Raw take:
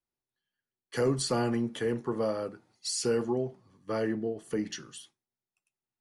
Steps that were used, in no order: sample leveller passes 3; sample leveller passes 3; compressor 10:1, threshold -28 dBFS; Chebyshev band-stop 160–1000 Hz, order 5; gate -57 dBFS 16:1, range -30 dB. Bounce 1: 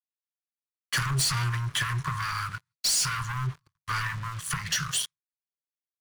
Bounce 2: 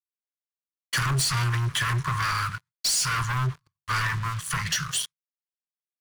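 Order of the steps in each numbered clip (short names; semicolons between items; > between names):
first sample leveller > compressor > gate > Chebyshev band-stop > second sample leveller; gate > first sample leveller > Chebyshev band-stop > compressor > second sample leveller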